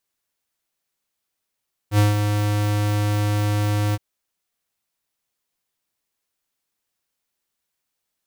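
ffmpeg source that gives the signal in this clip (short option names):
-f lavfi -i "aevalsrc='0.2*(2*lt(mod(104*t,1),0.5)-1)':d=2.069:s=44100,afade=t=in:d=0.075,afade=t=out:st=0.075:d=0.155:silence=0.473,afade=t=out:st=2.03:d=0.039"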